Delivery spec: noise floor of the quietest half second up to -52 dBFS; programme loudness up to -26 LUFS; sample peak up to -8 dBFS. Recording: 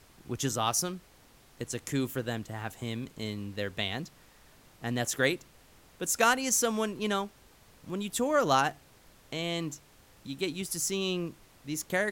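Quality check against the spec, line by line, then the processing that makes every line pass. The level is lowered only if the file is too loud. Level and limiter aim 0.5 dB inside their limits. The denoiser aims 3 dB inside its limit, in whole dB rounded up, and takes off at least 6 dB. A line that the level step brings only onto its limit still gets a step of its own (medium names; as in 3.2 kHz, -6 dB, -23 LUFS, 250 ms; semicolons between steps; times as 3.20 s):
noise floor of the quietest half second -59 dBFS: pass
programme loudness -31.0 LUFS: pass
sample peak -10.0 dBFS: pass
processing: none needed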